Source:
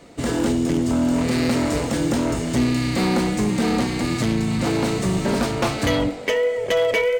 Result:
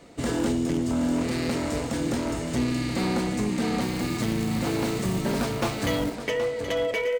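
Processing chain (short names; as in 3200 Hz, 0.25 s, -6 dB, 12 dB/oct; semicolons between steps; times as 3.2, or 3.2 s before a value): vocal rider 2 s; echo 0.773 s -10 dB; 3.81–6.15 short-mantissa float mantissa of 2-bit; gain -6 dB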